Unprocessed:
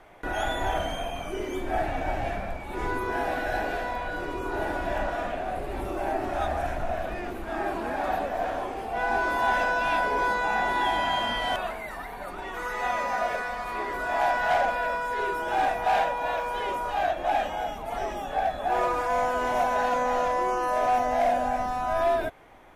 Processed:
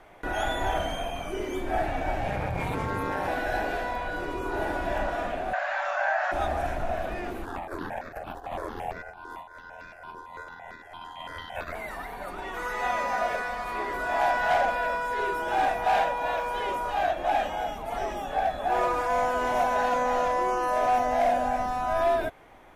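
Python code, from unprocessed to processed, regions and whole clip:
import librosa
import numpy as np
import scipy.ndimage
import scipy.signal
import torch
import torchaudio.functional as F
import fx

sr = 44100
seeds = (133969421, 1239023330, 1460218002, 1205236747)

y = fx.chain(x, sr, fx.ring_mod(carrier_hz=100.0),
    fx.env_flatten(amount_pct=100), at=(2.27, 3.28))
y = fx.chain(y, sr, fx.brickwall_bandpass(low_hz=540.0, high_hz=7400.0),
    fx.peak_eq(hz=1600.0, db=14.5, octaves=0.47),
    fx.env_flatten(amount_pct=50), at=(5.53, 6.32))
y = fx.chain(y, sr, fx.ring_mod(carrier_hz=42.0),
    fx.over_compress(threshold_db=-34.0, ratio=-0.5),
    fx.phaser_held(hz=8.9, low_hz=620.0, high_hz=3000.0), at=(7.45, 11.75))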